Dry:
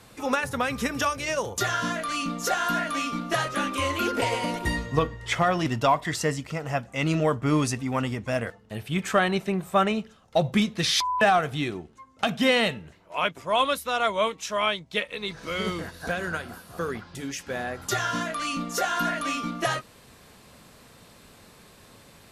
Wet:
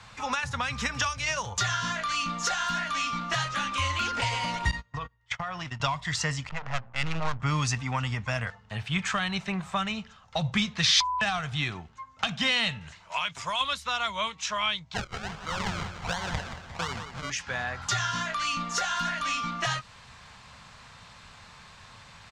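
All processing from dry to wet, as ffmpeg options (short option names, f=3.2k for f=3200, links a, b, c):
-filter_complex "[0:a]asettb=1/sr,asplit=3[a][b][c];[a]atrim=end=4.714[d];[b]atrim=start=4.71:end=5.8,asetpts=PTS-STARTPTS,afade=t=in:d=0.004:c=qsin,afade=t=out:st=1.086:d=0.004:c=qsin,agate=range=-33dB:threshold=-28dB:ratio=16:release=100:detection=peak,acompressor=threshold=-30dB:ratio=16:attack=3.2:release=140:knee=1:detection=peak[e];[c]atrim=start=5.796[f];[d][e]acrossfade=d=0.004:c1=hsin:c2=qsin[g];[g][f]acrossfade=d=0.004:c1=qsin:c2=hsin,asettb=1/sr,asplit=3[h][i][j];[h]atrim=end=6.494[k];[i]atrim=start=6.49:end=7.4,asetpts=PTS-STARTPTS,afade=t=in:d=0.004:c=qsin,afade=t=out:st=0.906:d=0.004:c=qsin,bandreject=f=60:t=h:w=6,bandreject=f=120:t=h:w=6,bandreject=f=180:t=h:w=6,bandreject=f=240:t=h:w=6,bandreject=f=300:t=h:w=6,bandreject=f=360:t=h:w=6,bandreject=f=420:t=h:w=6,bandreject=f=480:t=h:w=6,bandreject=f=540:t=h:w=6,aeval=exprs='max(val(0),0)':c=same,adynamicsmooth=sensitivity=7:basefreq=760[l];[j]atrim=start=7.396[m];[k][l]acrossfade=d=0.004:c1=hsin:c2=qsin[n];[n][m]acrossfade=d=0.004:c1=qsin:c2=hsin,asettb=1/sr,asplit=3[o][p][q];[o]atrim=end=12.814[r];[p]atrim=start=12.81:end=13.61,asetpts=PTS-STARTPTS,afade=t=in:d=0.004:c=qsin,afade=t=out:st=0.796:d=0.004:c=qsin,equalizer=f=9.2k:t=o:w=2.6:g=13,acompressor=threshold=-24dB:ratio=6:attack=3.2:release=140:knee=1:detection=peak[s];[q]atrim=start=13.606[t];[r][s]acrossfade=d=0.004:c1=hsin:c2=qsin[u];[u][t]acrossfade=d=0.004:c1=qsin:c2=hsin,asettb=1/sr,asplit=3[v][w][x];[v]atrim=end=14.944[y];[w]atrim=start=14.94:end=17.3,asetpts=PTS-STARTPTS,afade=t=in:d=0.004:c=qsin,afade=t=out:st=2.356:d=0.004:c=qsin,lowpass=1.9k,acrusher=samples=34:mix=1:aa=0.000001:lfo=1:lforange=34:lforate=1.4,aecho=1:1:177|354|531|708|885:0.282|0.127|0.0571|0.0257|0.0116,atrim=end_sample=104076[z];[x]atrim=start=17.296[aa];[y][z]acrossfade=d=0.004:c1=hsin:c2=qsin[ab];[ab][aa]acrossfade=d=0.004:c1=qsin:c2=hsin,firequalizer=gain_entry='entry(110,0);entry(320,-16);entry(900,3);entry(6900,-2);entry(12000,-25)':delay=0.05:min_phase=1,acrossover=split=230|3000[ac][ad][ae];[ad]acompressor=threshold=-32dB:ratio=6[af];[ac][af][ae]amix=inputs=3:normalize=0,volume=3dB"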